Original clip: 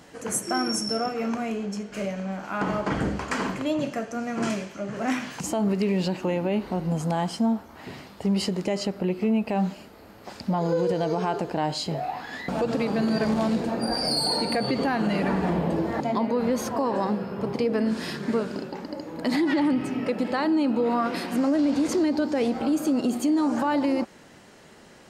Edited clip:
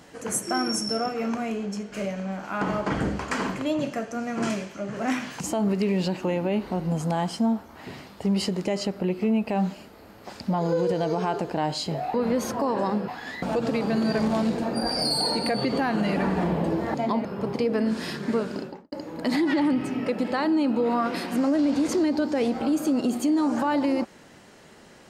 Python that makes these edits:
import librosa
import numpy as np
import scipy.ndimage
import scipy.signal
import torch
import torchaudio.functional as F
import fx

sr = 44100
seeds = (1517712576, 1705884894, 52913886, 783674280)

y = fx.studio_fade_out(x, sr, start_s=18.6, length_s=0.32)
y = fx.edit(y, sr, fx.move(start_s=16.31, length_s=0.94, to_s=12.14), tone=tone)